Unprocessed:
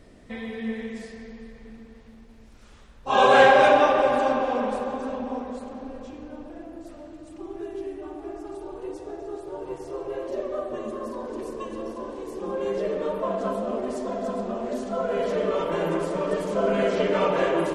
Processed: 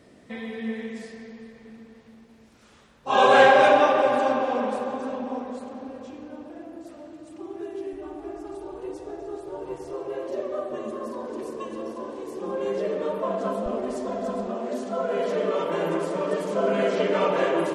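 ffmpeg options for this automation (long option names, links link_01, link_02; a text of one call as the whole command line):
ffmpeg -i in.wav -af "asetnsamples=nb_out_samples=441:pad=0,asendcmd='7.93 highpass f 42;9.93 highpass f 110;13.66 highpass f 41;14.47 highpass f 160',highpass=120" out.wav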